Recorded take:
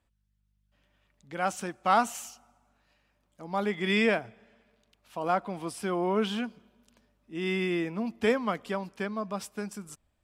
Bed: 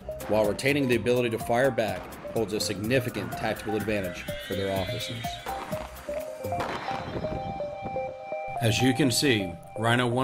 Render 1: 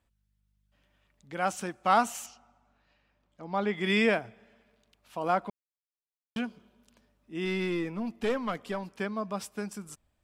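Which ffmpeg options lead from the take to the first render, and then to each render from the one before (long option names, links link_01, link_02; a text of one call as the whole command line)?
ffmpeg -i in.wav -filter_complex "[0:a]asettb=1/sr,asplit=3[link_01][link_02][link_03];[link_01]atrim=end=2.264[link_04];[link_02]atrim=start=2.26:end=3.75,asetpts=PTS-STARTPTS,afade=type=in:duration=0.004:curve=qsin,afade=type=out:start_time=1.486:duration=0.004:curve=qsin,lowpass=4800[link_05];[link_03]atrim=start=3.746[link_06];[link_04][link_05]acrossfade=duration=0.004:curve1=hsin:curve2=qsin[link_07];[link_07][link_06]acrossfade=duration=0.004:curve1=qsin:curve2=hsin,asettb=1/sr,asplit=3[link_08][link_09][link_10];[link_08]atrim=end=7.454[link_11];[link_09]atrim=start=7.45:end=8.95,asetpts=PTS-STARTPTS,afade=type=in:duration=0.004:curve=qsin,afade=type=out:start_time=1.496:duration=0.004:curve=qsin,aeval=exprs='(tanh(12.6*val(0)+0.3)-tanh(0.3))/12.6':channel_layout=same[link_12];[link_10]atrim=start=8.946[link_13];[link_11][link_12]acrossfade=duration=0.004:curve1=hsin:curve2=qsin[link_14];[link_14][link_13]acrossfade=duration=0.004:curve1=qsin:curve2=hsin,asplit=3[link_15][link_16][link_17];[link_15]atrim=end=5.5,asetpts=PTS-STARTPTS,afade=type=out:start_time=5.496:duration=0.004:curve=hsin[link_18];[link_16]atrim=start=5.5:end=6.36,asetpts=PTS-STARTPTS,volume=0[link_19];[link_17]atrim=start=6.36,asetpts=PTS-STARTPTS,afade=type=in:duration=0.004:curve=hsin[link_20];[link_18][link_19][link_20]concat=n=3:v=0:a=1" out.wav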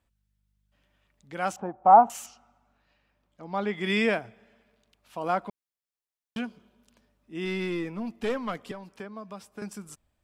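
ffmpeg -i in.wav -filter_complex "[0:a]asettb=1/sr,asplit=3[link_01][link_02][link_03];[link_01]atrim=end=1.564[link_04];[link_02]atrim=start=1.56:end=2.1,asetpts=PTS-STARTPTS,afade=type=in:duration=0.004:curve=qsin,afade=type=out:start_time=0.536:duration=0.004:curve=qsin,lowpass=frequency=820:width_type=q:width=4.2[link_05];[link_03]atrim=start=2.096[link_06];[link_04][link_05]acrossfade=duration=0.004:curve1=hsin:curve2=qsin[link_07];[link_07][link_06]acrossfade=duration=0.004:curve1=qsin:curve2=hsin,asettb=1/sr,asplit=3[link_08][link_09][link_10];[link_08]atrim=end=8.714[link_11];[link_09]atrim=start=8.71:end=9.62,asetpts=PTS-STARTPTS,afade=type=in:duration=0.004:curve=qsin,afade=type=out:start_time=0.906:duration=0.004:curve=qsin,acrossover=split=300|1500[link_12][link_13][link_14];[link_12]acompressor=threshold=-46dB:ratio=4[link_15];[link_13]acompressor=threshold=-41dB:ratio=4[link_16];[link_14]acompressor=threshold=-53dB:ratio=4[link_17];[link_15][link_16][link_17]amix=inputs=3:normalize=0[link_18];[link_10]atrim=start=9.616[link_19];[link_11][link_18]acrossfade=duration=0.004:curve1=hsin:curve2=qsin[link_20];[link_20][link_19]acrossfade=duration=0.004:curve1=qsin:curve2=hsin" out.wav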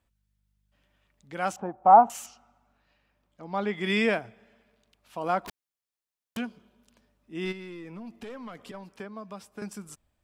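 ffmpeg -i in.wav -filter_complex "[0:a]asettb=1/sr,asplit=3[link_01][link_02][link_03];[link_01]atrim=end=5.454[link_04];[link_02]atrim=start=5.45:end=6.37,asetpts=PTS-STARTPTS,afade=type=in:duration=0.004:curve=qsin,afade=type=out:start_time=0.916:duration=0.004:curve=qsin,aeval=exprs='(mod(44.7*val(0)+1,2)-1)/44.7':channel_layout=same[link_05];[link_03]atrim=start=6.366[link_06];[link_04][link_05]acrossfade=duration=0.004:curve1=hsin:curve2=qsin[link_07];[link_07][link_06]acrossfade=duration=0.004:curve1=qsin:curve2=hsin,asplit=3[link_08][link_09][link_10];[link_08]afade=type=out:start_time=7.51:duration=0.02[link_11];[link_09]acompressor=threshold=-38dB:ratio=6:attack=3.2:release=140:knee=1:detection=peak,afade=type=in:start_time=7.51:duration=0.02,afade=type=out:start_time=8.73:duration=0.02[link_12];[link_10]afade=type=in:start_time=8.73:duration=0.02[link_13];[link_11][link_12][link_13]amix=inputs=3:normalize=0" out.wav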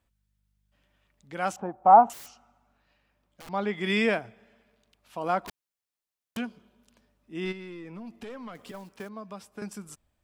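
ffmpeg -i in.wav -filter_complex "[0:a]asettb=1/sr,asplit=3[link_01][link_02][link_03];[link_01]atrim=end=2.134[link_04];[link_02]atrim=start=2.13:end=3.49,asetpts=PTS-STARTPTS,afade=type=in:duration=0.004:curve=qsin,afade=type=out:start_time=1.356:duration=0.004:curve=qsin,aeval=exprs='(mod(100*val(0)+1,2)-1)/100':channel_layout=same[link_05];[link_03]atrim=start=3.486[link_06];[link_04][link_05]acrossfade=duration=0.004:curve1=hsin:curve2=qsin[link_07];[link_07][link_06]acrossfade=duration=0.004:curve1=qsin:curve2=hsin,asettb=1/sr,asplit=3[link_08][link_09][link_10];[link_08]atrim=end=7.404[link_11];[link_09]atrim=start=7.4:end=7.95,asetpts=PTS-STARTPTS,afade=type=in:duration=0.004:curve=qsin,afade=type=out:start_time=0.546:duration=0.004:curve=qsin,highshelf=frequency=6400:gain=-5[link_12];[link_10]atrim=start=7.946[link_13];[link_11][link_12]acrossfade=duration=0.004:curve1=hsin:curve2=qsin[link_14];[link_14][link_13]acrossfade=duration=0.004:curve1=qsin:curve2=hsin,asettb=1/sr,asplit=3[link_15][link_16][link_17];[link_15]atrim=end=8.554[link_18];[link_16]atrim=start=8.55:end=9.09,asetpts=PTS-STARTPTS,afade=type=in:duration=0.004:curve=qsin,afade=type=out:start_time=0.536:duration=0.004:curve=qsin,acrusher=bits=4:mode=log:mix=0:aa=0.000001[link_19];[link_17]atrim=start=9.086[link_20];[link_18][link_19]acrossfade=duration=0.004:curve1=hsin:curve2=qsin[link_21];[link_21][link_20]acrossfade=duration=0.004:curve1=qsin:curve2=hsin" out.wav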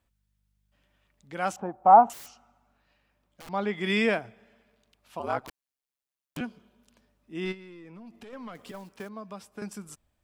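ffmpeg -i in.wav -filter_complex "[0:a]asettb=1/sr,asplit=3[link_01][link_02][link_03];[link_01]atrim=end=5.194[link_04];[link_02]atrim=start=5.19:end=6.41,asetpts=PTS-STARTPTS,afade=type=in:duration=0.004:curve=qsin,afade=type=out:start_time=1.216:duration=0.004:curve=qsin,aeval=exprs='val(0)*sin(2*PI*67*n/s)':channel_layout=same[link_05];[link_03]atrim=start=6.406[link_06];[link_04][link_05]acrossfade=duration=0.004:curve1=hsin:curve2=qsin[link_07];[link_07][link_06]acrossfade=duration=0.004:curve1=qsin:curve2=hsin,asettb=1/sr,asplit=3[link_08][link_09][link_10];[link_08]atrim=end=7.544[link_11];[link_09]atrim=start=7.54:end=8.33,asetpts=PTS-STARTPTS,afade=type=in:duration=0.004:curve=qsin,afade=type=out:start_time=0.786:duration=0.004:curve=qsin,acompressor=threshold=-47dB:ratio=2:attack=3.2:release=140:knee=1:detection=peak[link_12];[link_10]atrim=start=8.326[link_13];[link_11][link_12]acrossfade=duration=0.004:curve1=hsin:curve2=qsin[link_14];[link_14][link_13]acrossfade=duration=0.004:curve1=qsin:curve2=hsin" out.wav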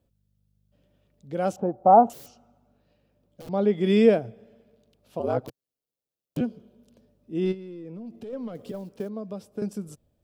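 ffmpeg -i in.wav -af "equalizer=frequency=125:width_type=o:width=1:gain=10,equalizer=frequency=250:width_type=o:width=1:gain=4,equalizer=frequency=500:width_type=o:width=1:gain=11,equalizer=frequency=1000:width_type=o:width=1:gain=-7,equalizer=frequency=2000:width_type=o:width=1:gain=-8,equalizer=frequency=8000:width_type=o:width=1:gain=-4" out.wav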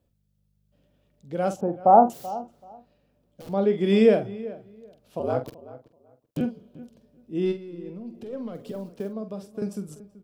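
ffmpeg -i in.wav -filter_complex "[0:a]asplit=2[link_01][link_02];[link_02]adelay=46,volume=-9.5dB[link_03];[link_01][link_03]amix=inputs=2:normalize=0,asplit=2[link_04][link_05];[link_05]adelay=382,lowpass=frequency=1900:poles=1,volume=-17dB,asplit=2[link_06][link_07];[link_07]adelay=382,lowpass=frequency=1900:poles=1,volume=0.2[link_08];[link_04][link_06][link_08]amix=inputs=3:normalize=0" out.wav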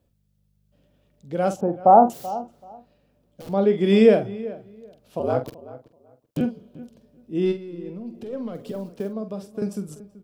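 ffmpeg -i in.wav -af "volume=3dB,alimiter=limit=-3dB:level=0:latency=1" out.wav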